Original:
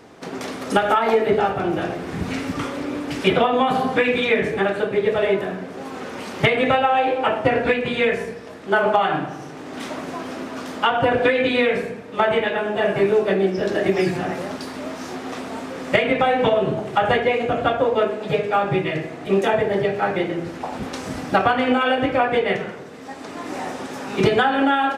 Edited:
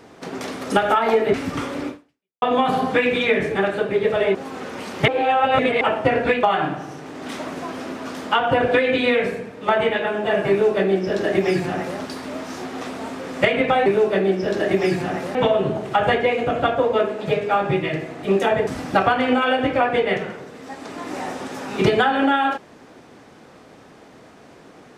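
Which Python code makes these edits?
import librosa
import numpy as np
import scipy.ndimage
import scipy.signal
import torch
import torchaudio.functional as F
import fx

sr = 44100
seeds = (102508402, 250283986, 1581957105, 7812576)

y = fx.edit(x, sr, fx.cut(start_s=1.34, length_s=1.02),
    fx.fade_out_span(start_s=2.9, length_s=0.54, curve='exp'),
    fx.cut(start_s=5.37, length_s=0.38),
    fx.reverse_span(start_s=6.48, length_s=0.73),
    fx.cut(start_s=7.83, length_s=1.11),
    fx.duplicate(start_s=13.01, length_s=1.49, to_s=16.37),
    fx.cut(start_s=19.69, length_s=1.37), tone=tone)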